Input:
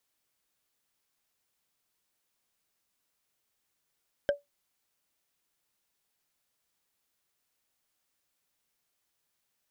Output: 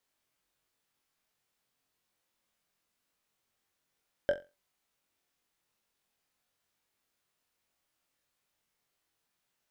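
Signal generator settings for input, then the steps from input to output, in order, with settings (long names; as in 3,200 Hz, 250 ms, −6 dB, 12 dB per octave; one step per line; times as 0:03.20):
struck wood, lowest mode 573 Hz, decay 0.16 s, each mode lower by 7 dB, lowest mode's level −18.5 dB
high-shelf EQ 4,900 Hz −6.5 dB
on a send: flutter between parallel walls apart 3.8 metres, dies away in 0.26 s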